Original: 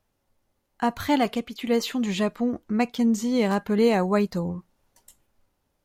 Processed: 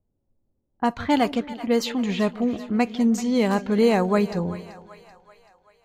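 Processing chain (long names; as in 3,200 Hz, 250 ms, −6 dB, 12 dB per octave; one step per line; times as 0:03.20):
low-pass that shuts in the quiet parts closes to 380 Hz, open at −19 dBFS
echo with a time of its own for lows and highs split 610 Hz, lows 158 ms, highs 384 ms, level −15 dB
level +1.5 dB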